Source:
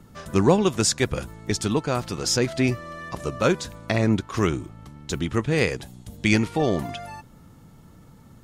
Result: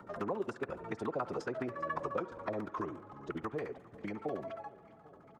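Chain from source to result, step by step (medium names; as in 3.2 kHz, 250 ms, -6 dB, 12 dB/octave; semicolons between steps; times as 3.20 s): Doppler pass-by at 2.20 s, 15 m/s, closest 11 m; treble shelf 5.9 kHz +7.5 dB; compression 5:1, threshold -37 dBFS, peak gain reduction 18.5 dB; LFO low-pass saw down 9.1 Hz 340–1500 Hz; time stretch by phase-locked vocoder 0.64×; RIAA curve recording; on a send: feedback delay 398 ms, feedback 52%, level -24 dB; on the sum: spring tank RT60 1.1 s, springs 50 ms, chirp 50 ms, DRR 17 dB; three bands compressed up and down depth 40%; trim +5.5 dB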